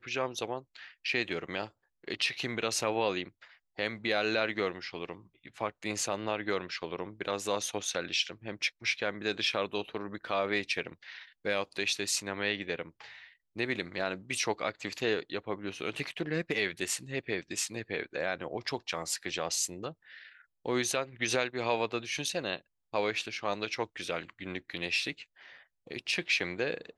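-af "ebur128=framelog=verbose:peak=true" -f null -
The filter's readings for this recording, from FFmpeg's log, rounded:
Integrated loudness:
  I:         -33.2 LUFS
  Threshold: -43.6 LUFS
Loudness range:
  LRA:         2.5 LU
  Threshold: -53.6 LUFS
  LRA low:   -34.9 LUFS
  LRA high:  -32.4 LUFS
True peak:
  Peak:      -13.7 dBFS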